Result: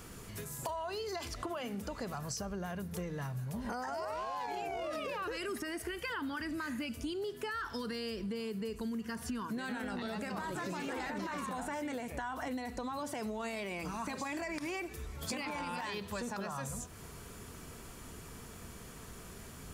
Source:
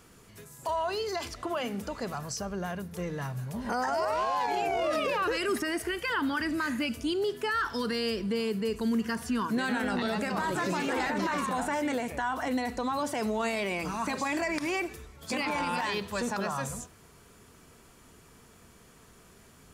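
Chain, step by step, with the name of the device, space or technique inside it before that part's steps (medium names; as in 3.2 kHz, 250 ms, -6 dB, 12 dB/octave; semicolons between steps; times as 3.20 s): ASMR close-microphone chain (bass shelf 130 Hz +5.5 dB; compression 5:1, threshold -43 dBFS, peak gain reduction 17 dB; treble shelf 11 kHz +4.5 dB); trim +5 dB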